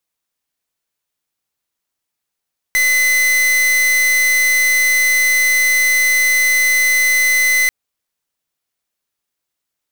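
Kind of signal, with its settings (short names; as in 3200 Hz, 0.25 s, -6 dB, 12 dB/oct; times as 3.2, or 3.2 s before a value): pulse 2030 Hz, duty 44% -13.5 dBFS 4.94 s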